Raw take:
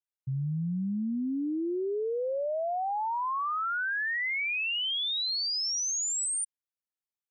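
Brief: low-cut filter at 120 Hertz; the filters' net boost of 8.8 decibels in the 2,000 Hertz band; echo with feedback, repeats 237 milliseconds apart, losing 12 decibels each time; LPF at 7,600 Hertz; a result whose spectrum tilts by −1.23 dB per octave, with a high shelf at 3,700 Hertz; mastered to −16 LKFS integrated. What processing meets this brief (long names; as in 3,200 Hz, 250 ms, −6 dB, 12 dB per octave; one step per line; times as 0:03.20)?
high-pass filter 120 Hz
low-pass filter 7,600 Hz
parametric band 2,000 Hz +8.5 dB
high-shelf EQ 3,700 Hz +8.5 dB
repeating echo 237 ms, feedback 25%, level −12 dB
level +7.5 dB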